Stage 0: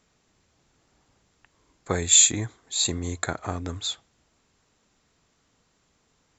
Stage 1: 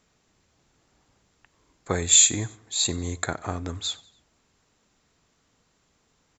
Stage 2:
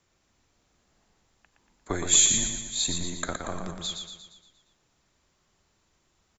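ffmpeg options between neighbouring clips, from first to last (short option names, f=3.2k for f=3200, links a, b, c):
-af "aecho=1:1:93|186|279:0.075|0.036|0.0173"
-af "afreqshift=-86,aecho=1:1:117|234|351|468|585|702|819:0.531|0.276|0.144|0.0746|0.0388|0.0202|0.0105,volume=-3.5dB"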